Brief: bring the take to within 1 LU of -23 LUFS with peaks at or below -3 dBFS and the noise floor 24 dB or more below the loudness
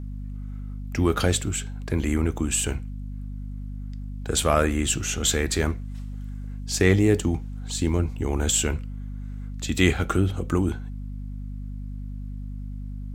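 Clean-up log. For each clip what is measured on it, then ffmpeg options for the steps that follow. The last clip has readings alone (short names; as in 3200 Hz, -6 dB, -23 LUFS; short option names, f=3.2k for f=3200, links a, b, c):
hum 50 Hz; harmonics up to 250 Hz; hum level -31 dBFS; loudness -24.5 LUFS; peak -5.0 dBFS; loudness target -23.0 LUFS
-> -af "bandreject=f=50:t=h:w=4,bandreject=f=100:t=h:w=4,bandreject=f=150:t=h:w=4,bandreject=f=200:t=h:w=4,bandreject=f=250:t=h:w=4"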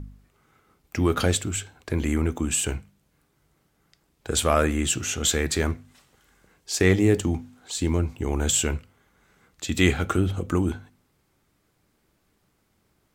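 hum none; loudness -24.5 LUFS; peak -6.0 dBFS; loudness target -23.0 LUFS
-> -af "volume=1.5dB"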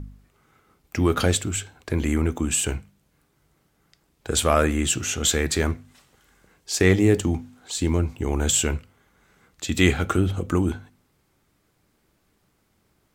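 loudness -23.0 LUFS; peak -4.5 dBFS; noise floor -68 dBFS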